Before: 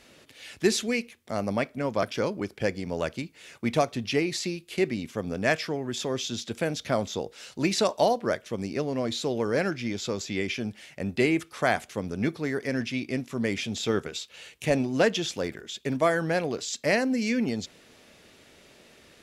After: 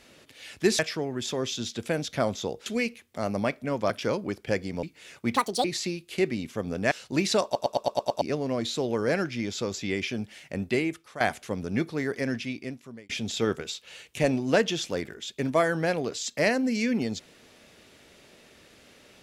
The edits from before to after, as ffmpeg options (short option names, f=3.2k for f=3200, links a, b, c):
-filter_complex "[0:a]asplit=16[a][b][c][d][e][f][g][h][i][j][k][l][m][n][o][p];[a]atrim=end=0.792[q];[b]atrim=start=5.508:end=7.382[r];[c]atrim=start=0.788:end=2.962[s];[d]atrim=start=3.218:end=3.754[t];[e]atrim=start=3.75:end=4.24,asetpts=PTS-STARTPTS,asetrate=76293,aresample=44100[u];[f]atrim=start=4.236:end=5.512[v];[g]atrim=start=7.378:end=8.022[w];[h]atrim=start=7.908:end=8.022[x];[i]atrim=start=7.908:end=8.022[y];[j]atrim=start=7.908:end=8.022[z];[k]atrim=start=7.908:end=8.022[aa];[l]atrim=start=7.908:end=8.022[ab];[m]atrim=start=7.908:end=8.022[ac];[n]atrim=start=8.678:end=11.67,asetpts=PTS-STARTPTS,afade=t=out:st=2.362:d=0.63:silence=0.177828[ad];[o]atrim=start=11.67:end=13.56,asetpts=PTS-STARTPTS,afade=t=in:d=0.004:c=hsin:silence=0.177828,afade=t=out:st=1.04:d=0.85[ae];[p]atrim=start=13.56,asetpts=PTS-STARTPTS,afade=t=in:d=0.004:c=hsin[af];[q][r]acrossfade=d=0.004:c1=hsin:c2=hsin[ag];[ag][s]acrossfade=d=0.004:c1=hsin:c2=hsin[ah];[ah][t]acrossfade=d=0.004:c1=hsin:c2=hsin[ai];[ai][u]acrossfade=d=0.004:c1=hsin:c2=hsin[aj];[aj][v]acrossfade=d=0.004:c1=hsin:c2=hsin[ak];[ak][w]acrossfade=d=0.004:c1=hsin:c2=hsin[al];[al][x]acrossfade=d=0.004:c1=hsin:c2=hsin[am];[am][y]acrossfade=d=0.004:c1=hsin:c2=hsin[an];[an][z]acrossfade=d=0.004:c1=hsin:c2=hsin[ao];[ao][aa]acrossfade=d=0.004:c1=hsin:c2=hsin[ap];[ap][ab]acrossfade=d=0.004:c1=hsin:c2=hsin[aq];[aq][ac]acrossfade=d=0.004:c1=hsin:c2=hsin[ar];[ad][ae][af]concat=n=3:v=0:a=1[as];[ar][as]acrossfade=d=0.004:c1=hsin:c2=hsin"